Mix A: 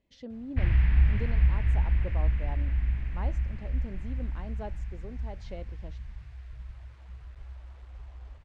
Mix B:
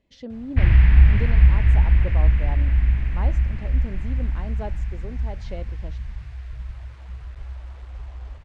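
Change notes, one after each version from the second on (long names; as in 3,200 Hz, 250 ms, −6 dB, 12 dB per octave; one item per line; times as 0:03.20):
speech +6.0 dB
background +9.0 dB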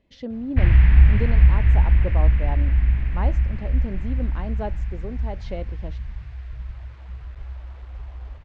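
speech +4.0 dB
master: add high-frequency loss of the air 88 metres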